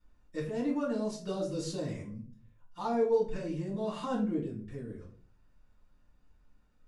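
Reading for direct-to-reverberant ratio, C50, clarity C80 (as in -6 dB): -9.5 dB, 7.0 dB, 11.5 dB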